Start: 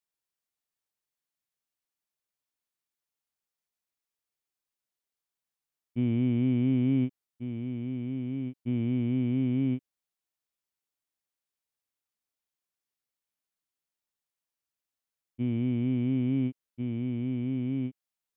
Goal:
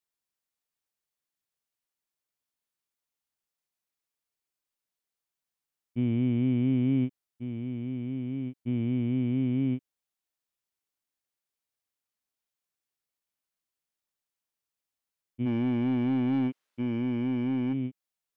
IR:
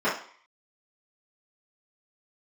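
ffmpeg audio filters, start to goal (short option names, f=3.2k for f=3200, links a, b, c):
-filter_complex "[0:a]asplit=3[a][b][c];[a]afade=t=out:st=15.45:d=0.02[d];[b]asplit=2[e][f];[f]highpass=f=720:p=1,volume=20dB,asoftclip=type=tanh:threshold=-19.5dB[g];[e][g]amix=inputs=2:normalize=0,lowpass=f=2.6k:p=1,volume=-6dB,afade=t=in:st=15.45:d=0.02,afade=t=out:st=17.72:d=0.02[h];[c]afade=t=in:st=17.72:d=0.02[i];[d][h][i]amix=inputs=3:normalize=0"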